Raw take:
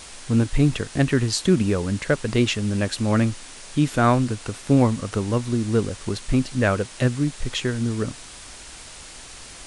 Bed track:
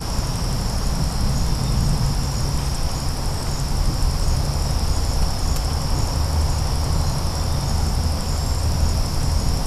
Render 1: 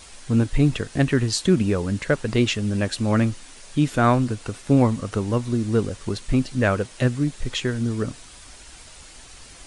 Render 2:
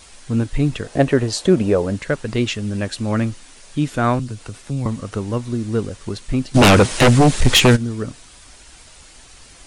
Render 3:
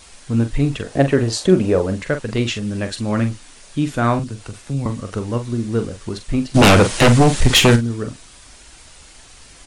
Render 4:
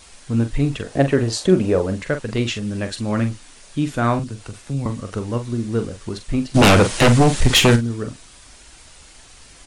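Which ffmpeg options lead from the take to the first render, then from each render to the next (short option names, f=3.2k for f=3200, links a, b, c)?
-af "afftdn=nr=6:nf=-42"
-filter_complex "[0:a]asettb=1/sr,asplit=3[a][b][c];[a]atrim=end=0.844[d];[b]atrim=start=0.84:end=1.96,asetpts=PTS-STARTPTS,afade=t=in:d=0.004:c=qsin,afade=t=out:st=1.116:d=0.004:c=qsin,equalizer=f=590:t=o:w=1.3:g=12[e];[c]atrim=start=1.956[f];[d][e]acrossfade=d=0.004:c1=hsin:c2=qsin[g];[g][f]acrossfade=d=0.004:c1=qsin:c2=hsin,asettb=1/sr,asplit=3[h][i][j];[h]atrim=end=4.194[k];[i]atrim=start=4.19:end=4.86,asetpts=PTS-STARTPTS,afade=t=in:d=0.004:c=qsin,afade=t=out:st=0.666:d=0.004:c=qsin,acrossover=split=160|3000[l][m][n];[m]acompressor=threshold=-33dB:ratio=4:attack=3.2:release=140:knee=2.83:detection=peak[o];[l][o][n]amix=inputs=3:normalize=0[p];[j]atrim=start=4.856[q];[k][p]acrossfade=d=0.004:c1=hsin:c2=qsin[r];[r][q]acrossfade=d=0.004:c1=qsin:c2=hsin,asplit=3[s][t][u];[s]afade=t=out:st=6.54:d=0.02[v];[t]aeval=exprs='0.473*sin(PI/2*5.01*val(0)/0.473)':c=same,afade=t=in:st=6.54:d=0.02,afade=t=out:st=7.75:d=0.02[w];[u]afade=t=in:st=7.75:d=0.02[x];[v][w][x]amix=inputs=3:normalize=0"
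-filter_complex "[0:a]asplit=2[a][b];[b]adelay=43,volume=-9dB[c];[a][c]amix=inputs=2:normalize=0"
-af "volume=-1.5dB"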